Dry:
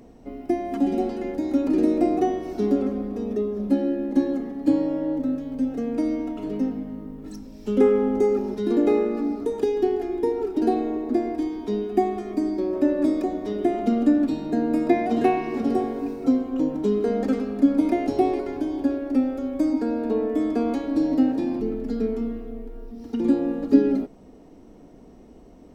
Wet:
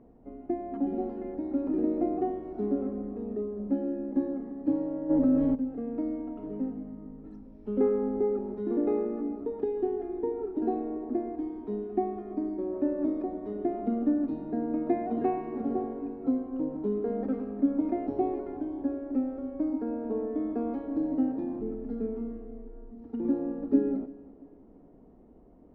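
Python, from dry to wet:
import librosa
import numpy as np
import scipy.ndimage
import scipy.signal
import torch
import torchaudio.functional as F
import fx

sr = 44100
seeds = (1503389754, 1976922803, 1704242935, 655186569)

y = scipy.signal.sosfilt(scipy.signal.butter(2, 1200.0, 'lowpass', fs=sr, output='sos'), x)
y = fx.echo_feedback(y, sr, ms=339, feedback_pct=41, wet_db=-22.0)
y = fx.env_flatten(y, sr, amount_pct=70, at=(5.09, 5.54), fade=0.02)
y = y * librosa.db_to_amplitude(-7.5)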